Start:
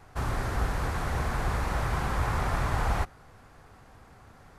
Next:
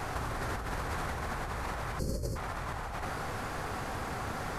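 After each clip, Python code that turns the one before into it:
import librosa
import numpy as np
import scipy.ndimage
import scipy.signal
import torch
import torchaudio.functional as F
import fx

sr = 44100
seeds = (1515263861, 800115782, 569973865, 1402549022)

y = fx.spec_box(x, sr, start_s=1.99, length_s=0.37, low_hz=610.0, high_hz=4200.0, gain_db=-24)
y = fx.low_shelf(y, sr, hz=160.0, db=-6.5)
y = fx.over_compress(y, sr, threshold_db=-43.0, ratio=-1.0)
y = y * librosa.db_to_amplitude(8.0)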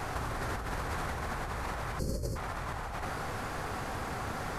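y = x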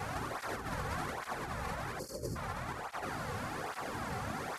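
y = fx.flanger_cancel(x, sr, hz=1.2, depth_ms=3.3)
y = y * librosa.db_to_amplitude(1.0)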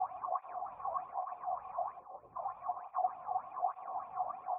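y = fx.formant_cascade(x, sr, vowel='a')
y = y + 10.0 ** (-15.5 / 20.0) * np.pad(y, (int(452 * sr / 1000.0), 0))[:len(y)]
y = fx.bell_lfo(y, sr, hz=3.3, low_hz=660.0, high_hz=3100.0, db=18)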